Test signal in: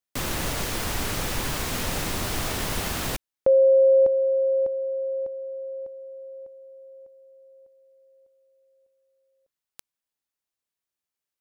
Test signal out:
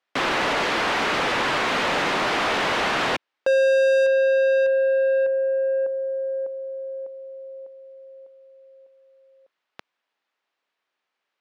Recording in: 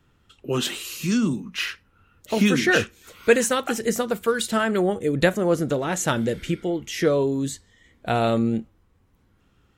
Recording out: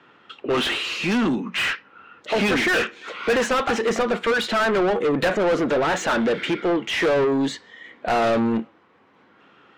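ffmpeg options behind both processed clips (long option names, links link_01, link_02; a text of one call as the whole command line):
ffmpeg -i in.wav -filter_complex "[0:a]highpass=190,lowpass=3600,asplit=2[link_01][link_02];[link_02]highpass=frequency=720:poles=1,volume=32dB,asoftclip=type=tanh:threshold=-4.5dB[link_03];[link_01][link_03]amix=inputs=2:normalize=0,lowpass=frequency=2400:poles=1,volume=-6dB,volume=-7.5dB" out.wav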